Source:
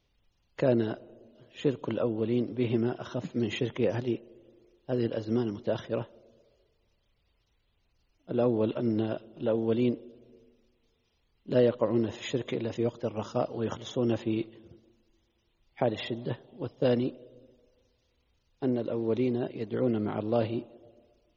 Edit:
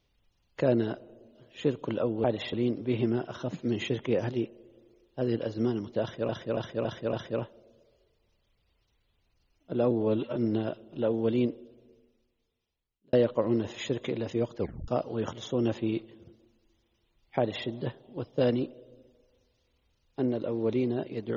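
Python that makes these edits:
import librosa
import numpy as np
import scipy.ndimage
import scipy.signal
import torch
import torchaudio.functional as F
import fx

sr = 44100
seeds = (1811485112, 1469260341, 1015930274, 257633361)

y = fx.edit(x, sr, fx.repeat(start_s=5.72, length_s=0.28, count=5),
    fx.stretch_span(start_s=8.5, length_s=0.3, factor=1.5),
    fx.fade_out_span(start_s=9.95, length_s=1.62),
    fx.tape_stop(start_s=13.02, length_s=0.3),
    fx.duplicate(start_s=15.82, length_s=0.29, to_s=2.24), tone=tone)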